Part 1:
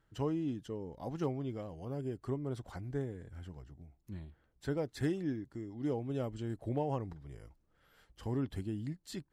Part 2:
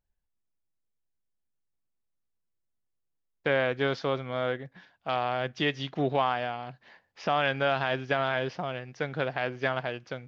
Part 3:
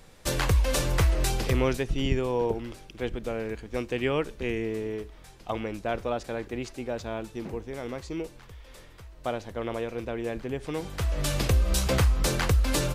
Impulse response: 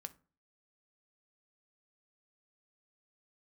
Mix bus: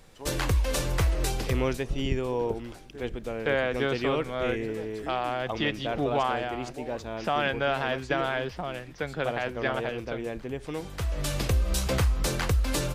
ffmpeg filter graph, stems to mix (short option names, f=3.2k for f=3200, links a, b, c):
-filter_complex "[0:a]highpass=310,volume=-4.5dB[a];[1:a]highpass=f=120:w=0.5412,highpass=f=120:w=1.3066,volume=-0.5dB[b];[2:a]volume=-2dB[c];[a][b][c]amix=inputs=3:normalize=0"